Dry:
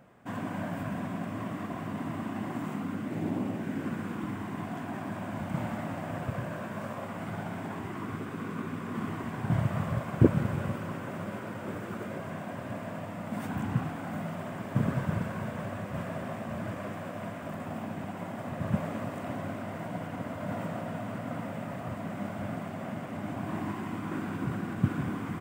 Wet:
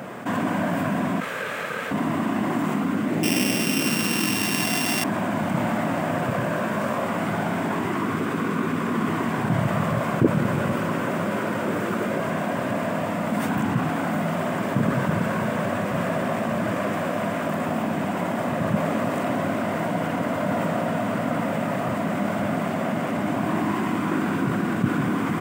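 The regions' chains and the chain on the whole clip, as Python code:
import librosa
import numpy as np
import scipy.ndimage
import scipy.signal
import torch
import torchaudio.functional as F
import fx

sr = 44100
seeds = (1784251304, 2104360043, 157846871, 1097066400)

y = fx.chain(x, sr, fx.highpass(hz=740.0, slope=24),
    fx.ring_mod(carrier_hz=540.0), at=(1.2, 1.91))
y = fx.chain(y, sr, fx.sample_sort(block=16),
    fx.highpass(hz=48.0, slope=12),
    fx.high_shelf(hz=2400.0, db=9.0), at=(3.23, 5.04))
y = scipy.signal.sosfilt(scipy.signal.butter(2, 170.0, 'highpass', fs=sr, output='sos'), y)
y = fx.notch(y, sr, hz=790.0, q=26.0)
y = fx.env_flatten(y, sr, amount_pct=50)
y = y * librosa.db_to_amplitude(2.5)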